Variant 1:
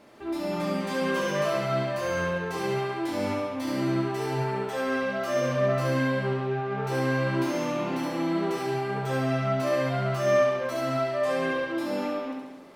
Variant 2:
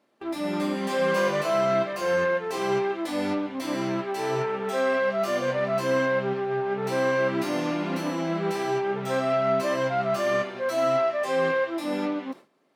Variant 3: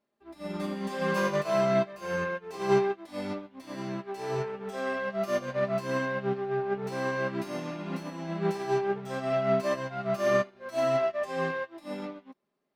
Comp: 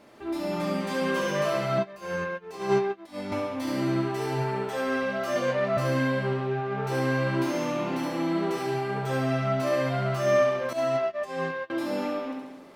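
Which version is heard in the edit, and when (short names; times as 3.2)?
1
1.78–3.32 from 3
5.36–5.77 from 2
10.73–11.7 from 3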